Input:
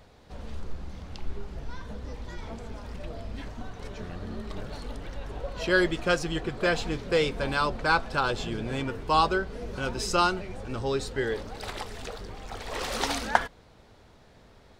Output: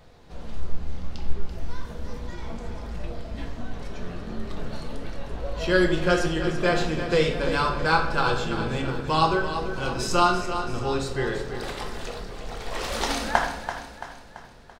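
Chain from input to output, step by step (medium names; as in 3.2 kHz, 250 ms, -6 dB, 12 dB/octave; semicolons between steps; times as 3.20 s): 1.49–2.19 s: treble shelf 9 kHz +10.5 dB; on a send: feedback delay 336 ms, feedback 49%, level -10 dB; on the sum: simulated room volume 200 m³, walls mixed, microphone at 0.8 m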